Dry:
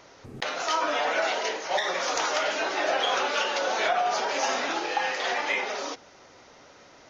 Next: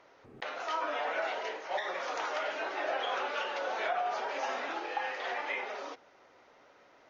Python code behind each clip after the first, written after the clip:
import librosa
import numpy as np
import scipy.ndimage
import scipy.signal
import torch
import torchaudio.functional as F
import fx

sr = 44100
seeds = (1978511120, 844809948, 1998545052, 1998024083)

y = fx.bass_treble(x, sr, bass_db=-9, treble_db=-14)
y = y * librosa.db_to_amplitude(-7.0)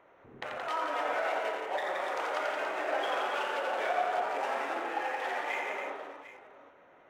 y = fx.wiener(x, sr, points=9)
y = fx.echo_multitap(y, sr, ms=(87, 173, 282, 752), db=(-5.5, -5.0, -6.5, -14.5))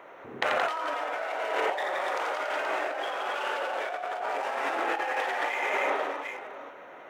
y = fx.highpass(x, sr, hz=310.0, slope=6)
y = fx.over_compress(y, sr, threshold_db=-39.0, ratio=-1.0)
y = y * librosa.db_to_amplitude(8.5)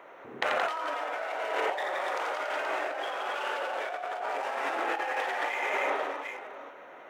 y = fx.highpass(x, sr, hz=140.0, slope=6)
y = y * librosa.db_to_amplitude(-1.5)